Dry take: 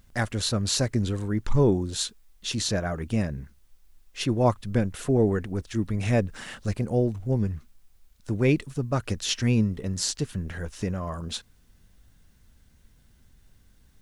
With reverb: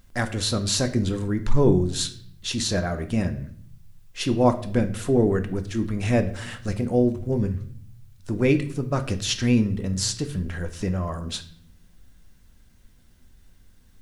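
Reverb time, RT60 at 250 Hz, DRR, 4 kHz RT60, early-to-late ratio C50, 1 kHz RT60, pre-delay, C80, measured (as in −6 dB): 0.55 s, 0.95 s, 7.0 dB, 0.50 s, 13.5 dB, 0.50 s, 3 ms, 17.5 dB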